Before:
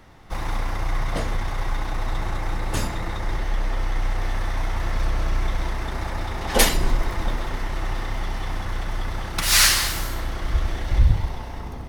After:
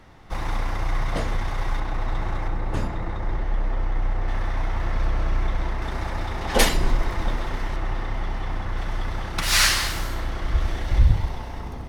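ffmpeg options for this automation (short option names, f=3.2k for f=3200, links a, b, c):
-af "asetnsamples=n=441:p=0,asendcmd='1.8 lowpass f 2600;2.48 lowpass f 1200;4.28 lowpass f 2500;5.82 lowpass f 5900;7.76 lowpass f 2300;8.77 lowpass f 4900;10.6 lowpass f 9900',lowpass=f=7k:p=1"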